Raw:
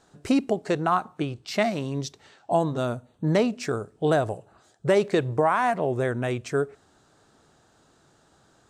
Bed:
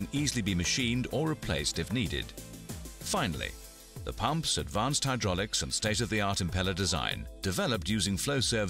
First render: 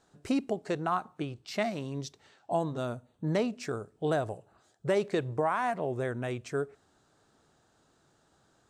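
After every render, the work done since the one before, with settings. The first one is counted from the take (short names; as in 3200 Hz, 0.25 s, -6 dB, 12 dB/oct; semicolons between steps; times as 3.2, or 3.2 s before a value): gain -7 dB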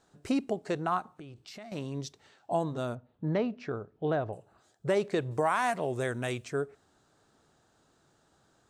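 1.01–1.72 compressor 5:1, threshold -44 dBFS; 2.95–4.33 air absorption 250 m; 5.31–6.45 high shelf 2700 Hz +12 dB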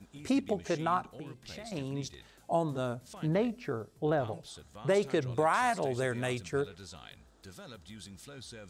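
add bed -18.5 dB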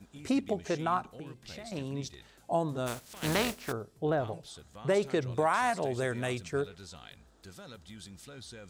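2.86–3.71 spectral contrast lowered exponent 0.47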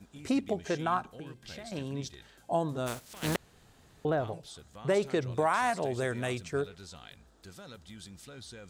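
0.6–2.68 small resonant body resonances 1600/3200 Hz, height 10 dB; 3.36–4.05 room tone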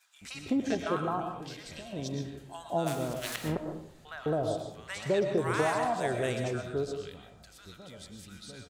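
bands offset in time highs, lows 0.21 s, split 1100 Hz; digital reverb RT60 0.66 s, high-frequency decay 0.55×, pre-delay 80 ms, DRR 4.5 dB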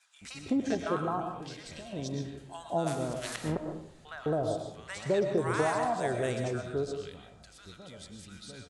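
steep low-pass 11000 Hz 72 dB/oct; dynamic EQ 2800 Hz, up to -4 dB, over -49 dBFS, Q 1.4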